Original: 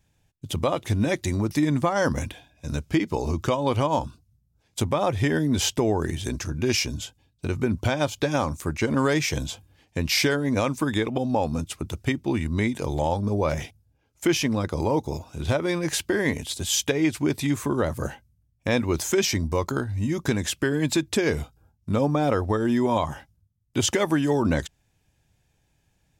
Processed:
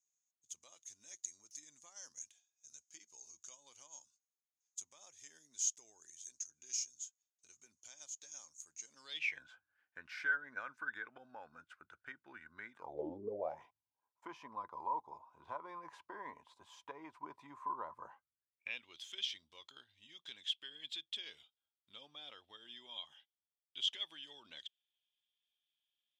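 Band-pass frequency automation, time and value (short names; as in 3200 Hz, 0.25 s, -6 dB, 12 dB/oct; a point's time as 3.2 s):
band-pass, Q 15
8.92 s 6600 Hz
9.43 s 1500 Hz
12.73 s 1500 Hz
13.1 s 280 Hz
13.61 s 1000 Hz
18.1 s 1000 Hz
18.86 s 3300 Hz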